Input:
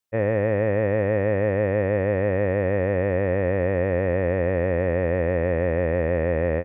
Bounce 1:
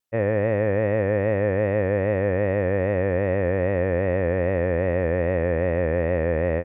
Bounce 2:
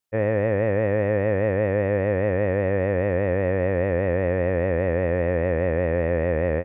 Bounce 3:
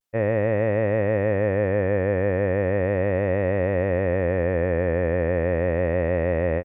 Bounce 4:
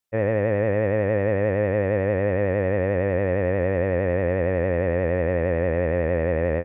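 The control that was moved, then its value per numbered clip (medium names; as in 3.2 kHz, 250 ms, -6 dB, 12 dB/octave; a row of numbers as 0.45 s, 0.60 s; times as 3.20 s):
vibrato, rate: 2.5 Hz, 5 Hz, 0.36 Hz, 11 Hz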